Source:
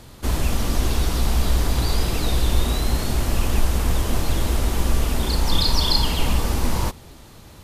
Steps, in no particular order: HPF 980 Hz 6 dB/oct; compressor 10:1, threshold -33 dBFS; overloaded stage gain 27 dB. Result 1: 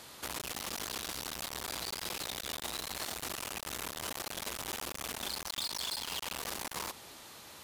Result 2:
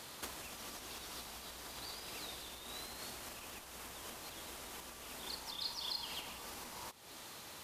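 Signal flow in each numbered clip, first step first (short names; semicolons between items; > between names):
overloaded stage > HPF > compressor; compressor > overloaded stage > HPF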